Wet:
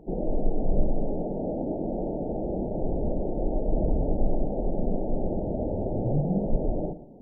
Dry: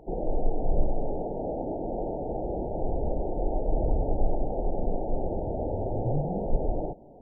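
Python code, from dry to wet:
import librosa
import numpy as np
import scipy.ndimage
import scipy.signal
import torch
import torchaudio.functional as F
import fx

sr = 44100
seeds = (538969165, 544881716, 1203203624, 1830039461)

y = fx.curve_eq(x, sr, hz=(120.0, 190.0, 720.0), db=(0, 8, -5))
y = y + 10.0 ** (-15.0 / 20.0) * np.pad(y, (int(119 * sr / 1000.0), 0))[:len(y)]
y = fx.dynamic_eq(y, sr, hz=610.0, q=4.3, threshold_db=-51.0, ratio=4.0, max_db=5)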